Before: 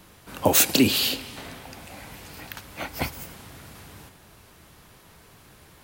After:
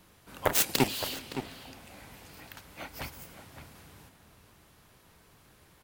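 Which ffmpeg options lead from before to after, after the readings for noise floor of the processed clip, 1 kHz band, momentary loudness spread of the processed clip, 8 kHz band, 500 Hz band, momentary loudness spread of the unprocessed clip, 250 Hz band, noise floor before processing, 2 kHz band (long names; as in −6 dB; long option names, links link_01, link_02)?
−61 dBFS, −4.5 dB, 23 LU, −8.5 dB, −7.0 dB, 23 LU, −10.5 dB, −53 dBFS, −6.5 dB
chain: -filter_complex "[0:a]aeval=exprs='0.631*(cos(1*acos(clip(val(0)/0.631,-1,1)))-cos(1*PI/2))+0.1*(cos(3*acos(clip(val(0)/0.631,-1,1)))-cos(3*PI/2))+0.1*(cos(7*acos(clip(val(0)/0.631,-1,1)))-cos(7*PI/2))':channel_layout=same,asplit=2[link_01][link_02];[link_02]adelay=565.6,volume=-10dB,highshelf=frequency=4000:gain=-12.7[link_03];[link_01][link_03]amix=inputs=2:normalize=0,volume=-3.5dB"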